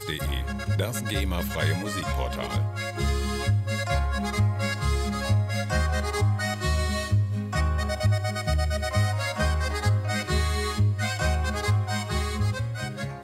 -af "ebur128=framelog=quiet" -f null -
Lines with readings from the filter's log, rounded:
Integrated loudness:
  I:         -26.6 LUFS
  Threshold: -36.6 LUFS
Loudness range:
  LRA:         1.7 LU
  Threshold: -46.3 LUFS
  LRA low:   -27.5 LUFS
  LRA high:  -25.8 LUFS